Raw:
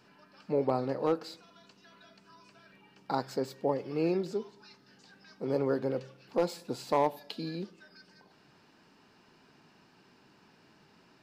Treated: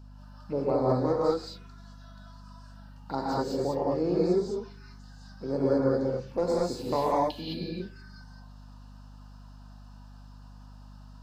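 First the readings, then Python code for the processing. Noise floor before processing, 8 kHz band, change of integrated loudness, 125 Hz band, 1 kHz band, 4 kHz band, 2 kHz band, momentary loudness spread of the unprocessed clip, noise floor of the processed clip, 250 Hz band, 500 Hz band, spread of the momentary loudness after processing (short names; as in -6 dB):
-63 dBFS, +3.0 dB, +4.0 dB, +6.5 dB, +3.5 dB, +3.5 dB, +0.5 dB, 11 LU, -48 dBFS, +5.0 dB, +4.5 dB, 12 LU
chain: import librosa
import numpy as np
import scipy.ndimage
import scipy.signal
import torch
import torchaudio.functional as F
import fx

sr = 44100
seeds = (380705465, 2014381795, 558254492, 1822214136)

y = fx.env_phaser(x, sr, low_hz=350.0, high_hz=2800.0, full_db=-30.0)
y = fx.rev_gated(y, sr, seeds[0], gate_ms=240, shape='rising', drr_db=-5.5)
y = fx.add_hum(y, sr, base_hz=50, snr_db=17)
y = y * librosa.db_to_amplitude(-1.0)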